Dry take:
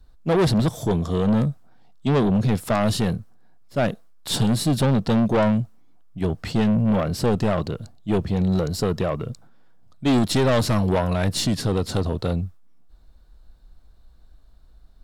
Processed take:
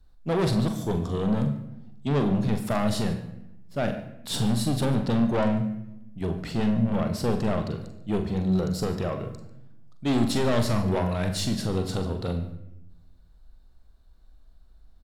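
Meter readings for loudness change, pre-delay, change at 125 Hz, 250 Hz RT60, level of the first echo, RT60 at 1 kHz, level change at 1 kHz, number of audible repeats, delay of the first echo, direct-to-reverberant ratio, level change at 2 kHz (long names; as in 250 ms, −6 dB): −4.5 dB, 34 ms, −4.5 dB, 1.3 s, −9.0 dB, 0.80 s, −5.0 dB, 2, 43 ms, 5.0 dB, −5.0 dB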